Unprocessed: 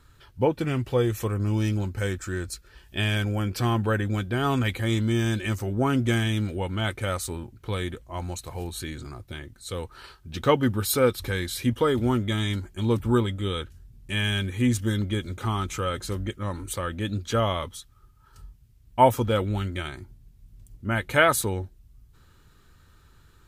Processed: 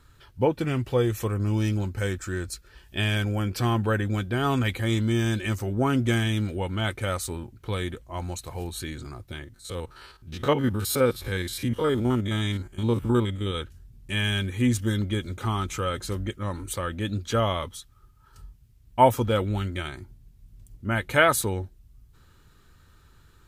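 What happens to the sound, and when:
0:09.44–0:13.55: spectrum averaged block by block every 50 ms

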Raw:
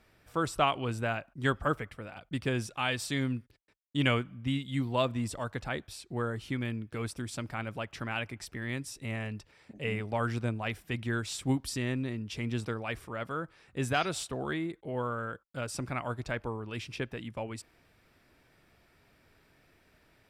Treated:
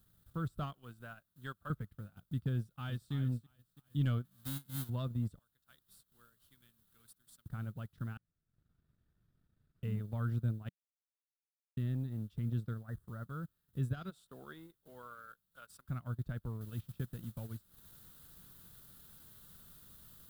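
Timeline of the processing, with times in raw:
0:00.73–0:01.70: high-pass filter 800 Hz 6 dB per octave
0:02.56–0:03.13: delay throw 330 ms, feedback 40%, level −10.5 dB
0:04.24–0:04.88: spectral envelope flattened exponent 0.1
0:05.39–0:07.46: first difference
0:08.17–0:09.83: fill with room tone
0:10.69–0:11.77: silence
0:12.83–0:13.30: linear-phase brick-wall band-stop 2,000–5,800 Hz
0:14.09–0:15.88: high-pass filter 320 Hz → 1,100 Hz
0:16.61: noise floor change −56 dB −45 dB
whole clip: leveller curve on the samples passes 1; drawn EQ curve 180 Hz 0 dB, 290 Hz −12 dB, 860 Hz −21 dB, 1,400 Hz −12 dB, 2,300 Hz −28 dB, 3,600 Hz −14 dB, 5,700 Hz −24 dB, 13,000 Hz −11 dB; transient designer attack +1 dB, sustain −12 dB; level −3 dB

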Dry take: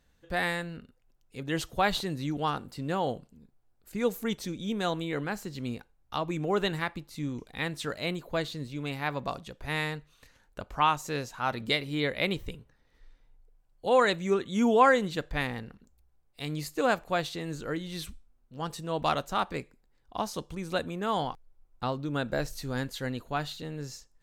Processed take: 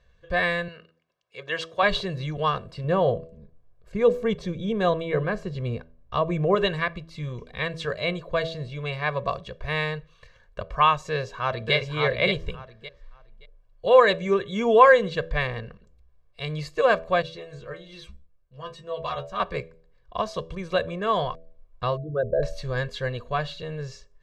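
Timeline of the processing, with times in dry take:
0:00.68–0:01.83: meter weighting curve A
0:02.84–0:06.55: tilt shelving filter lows +4.5 dB, about 1,200 Hz
0:11.10–0:11.74: delay throw 570 ms, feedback 20%, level −3.5 dB
0:17.22–0:19.40: stiff-string resonator 68 Hz, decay 0.26 s, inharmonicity 0.002
0:21.97–0:22.43: spectral envelope exaggerated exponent 3
whole clip: low-pass filter 3,900 Hz 12 dB per octave; comb filter 1.8 ms, depth 94%; hum removal 81.65 Hz, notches 8; level +3 dB

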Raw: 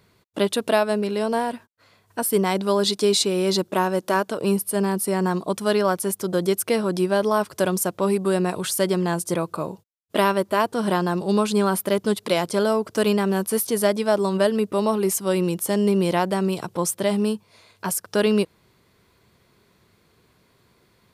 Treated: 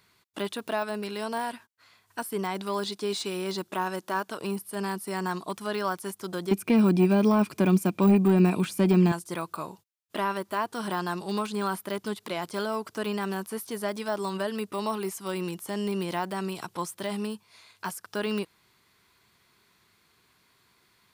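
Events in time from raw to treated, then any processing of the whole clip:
0:06.51–0:09.12: hollow resonant body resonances 210/2,400 Hz, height 17 dB, ringing for 20 ms
whole clip: parametric band 530 Hz −8.5 dB 0.74 octaves; de-essing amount 95%; low-shelf EQ 410 Hz −12 dB

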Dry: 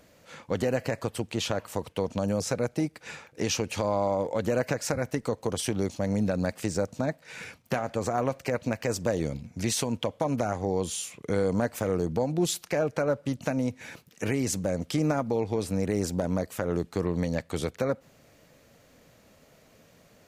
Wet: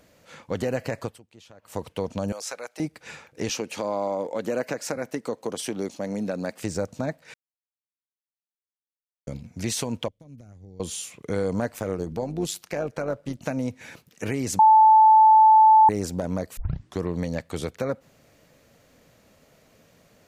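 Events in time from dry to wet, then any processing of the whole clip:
0:01.04–0:01.77: duck −21 dB, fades 0.15 s
0:02.32–0:02.80: high-pass filter 830 Hz
0:03.49–0:06.61: Chebyshev high-pass filter 240 Hz
0:07.34–0:09.27: silence
0:10.08–0:10.80: guitar amp tone stack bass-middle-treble 10-0-1
0:11.72–0:13.45: amplitude modulation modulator 100 Hz, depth 35%
0:14.59–0:15.89: beep over 874 Hz −10.5 dBFS
0:16.57: tape start 0.42 s

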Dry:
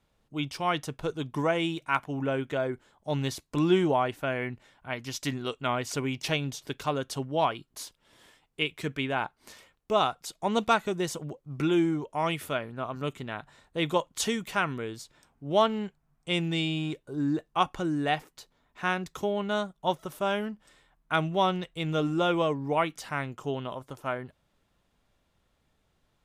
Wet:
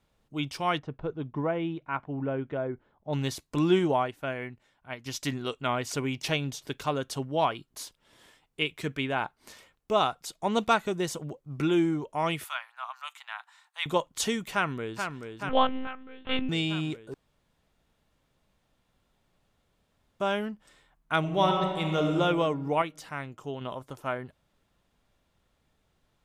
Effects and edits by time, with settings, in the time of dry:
0:00.79–0:03.13: head-to-tape spacing loss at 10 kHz 42 dB
0:03.79–0:05.06: expander for the loud parts, over −39 dBFS
0:12.44–0:13.86: Butterworth high-pass 820 Hz 48 dB per octave
0:14.53–0:14.99: delay throw 430 ms, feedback 75%, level −6 dB
0:15.49–0:16.49: one-pitch LPC vocoder at 8 kHz 260 Hz
0:17.14–0:20.20: fill with room tone
0:21.19–0:22.12: thrown reverb, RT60 1.8 s, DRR 2 dB
0:22.82–0:23.61: clip gain −4.5 dB

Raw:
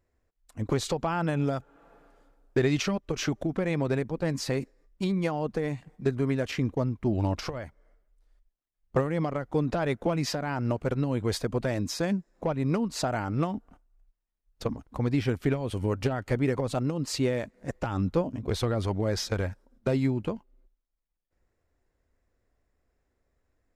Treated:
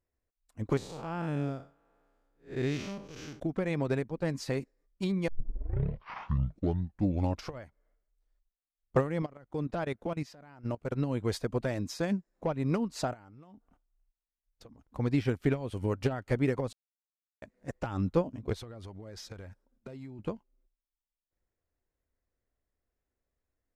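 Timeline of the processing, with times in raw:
0:00.77–0:03.40: spectrum smeared in time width 175 ms
0:05.28: tape start 2.12 s
0:09.22–0:10.92: output level in coarse steps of 14 dB
0:13.13–0:14.84: downward compressor, threshold −39 dBFS
0:16.73–0:17.42: silence
0:18.53–0:20.19: downward compressor 12 to 1, threshold −32 dBFS
whole clip: expander for the loud parts 1.5 to 1, over −43 dBFS

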